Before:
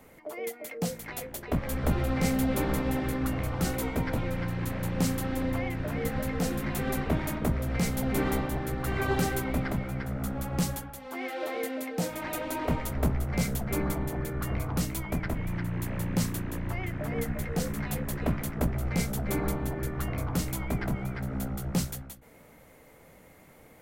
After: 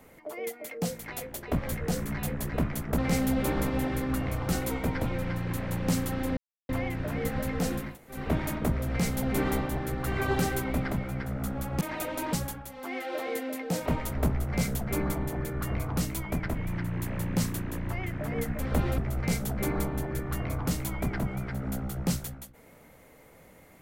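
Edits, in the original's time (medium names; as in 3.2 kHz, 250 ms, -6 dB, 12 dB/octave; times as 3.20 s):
1.72–2.10 s: swap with 17.40–18.66 s
5.49 s: insert silence 0.32 s
6.67–6.99 s: room tone, crossfade 0.24 s
12.14–12.66 s: move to 10.61 s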